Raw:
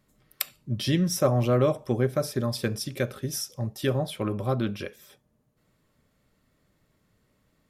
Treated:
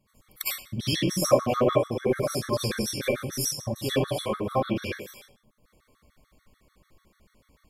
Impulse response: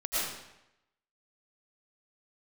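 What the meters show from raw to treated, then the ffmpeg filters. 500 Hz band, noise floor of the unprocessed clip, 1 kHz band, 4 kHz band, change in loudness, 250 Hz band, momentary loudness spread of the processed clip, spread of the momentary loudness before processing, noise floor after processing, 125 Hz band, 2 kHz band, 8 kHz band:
+1.5 dB, −70 dBFS, +3.5 dB, +3.5 dB, +0.5 dB, −1.0 dB, 9 LU, 10 LU, −70 dBFS, −4.5 dB, +2.5 dB, +3.5 dB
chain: -filter_complex "[0:a]asplit=2[link_01][link_02];[link_02]acompressor=threshold=-32dB:ratio=12,volume=1dB[link_03];[link_01][link_03]amix=inputs=2:normalize=0[link_04];[1:a]atrim=start_sample=2205,asetrate=79380,aresample=44100[link_05];[link_04][link_05]afir=irnorm=-1:irlink=0,afftfilt=real='re*gt(sin(2*PI*6.8*pts/sr)*(1-2*mod(floor(b*sr/1024/1100),2)),0)':imag='im*gt(sin(2*PI*6.8*pts/sr)*(1-2*mod(floor(b*sr/1024/1100),2)),0)':win_size=1024:overlap=0.75"

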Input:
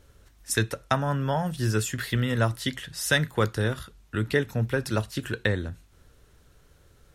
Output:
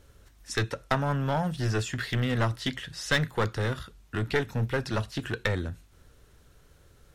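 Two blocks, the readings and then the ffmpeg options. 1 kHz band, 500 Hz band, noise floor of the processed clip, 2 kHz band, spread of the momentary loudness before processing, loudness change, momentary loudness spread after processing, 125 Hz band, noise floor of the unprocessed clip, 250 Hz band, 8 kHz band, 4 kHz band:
−1.0 dB, −2.5 dB, −59 dBFS, −2.0 dB, 7 LU, −2.5 dB, 7 LU, −2.0 dB, −59 dBFS, −2.5 dB, −7.5 dB, −2.0 dB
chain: -filter_complex "[0:a]acrossover=split=6400[link_01][link_02];[link_02]acompressor=threshold=-57dB:ratio=4:attack=1:release=60[link_03];[link_01][link_03]amix=inputs=2:normalize=0,aeval=exprs='clip(val(0),-1,0.0596)':channel_layout=same"

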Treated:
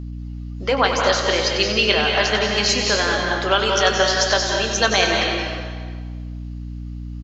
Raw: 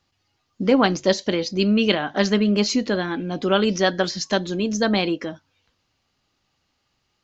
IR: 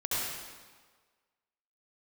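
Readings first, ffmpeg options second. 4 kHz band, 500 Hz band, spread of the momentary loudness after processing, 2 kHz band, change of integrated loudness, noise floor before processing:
+8.0 dB, +1.5 dB, 17 LU, +8.0 dB, +3.0 dB, −72 dBFS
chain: -filter_complex "[0:a]alimiter=limit=-9dB:level=0:latency=1:release=307,highpass=670,asplit=2[link_01][link_02];[link_02]adelay=23,volume=-12dB[link_03];[link_01][link_03]amix=inputs=2:normalize=0,asplit=2[link_04][link_05];[1:a]atrim=start_sample=2205,asetrate=40572,aresample=44100,adelay=94[link_06];[link_05][link_06]afir=irnorm=-1:irlink=0,volume=-8.5dB[link_07];[link_04][link_07]amix=inputs=2:normalize=0,aeval=exprs='val(0)+0.0158*(sin(2*PI*60*n/s)+sin(2*PI*2*60*n/s)/2+sin(2*PI*3*60*n/s)/3+sin(2*PI*4*60*n/s)/4+sin(2*PI*5*60*n/s)/5)':channel_layout=same,volume=7dB"

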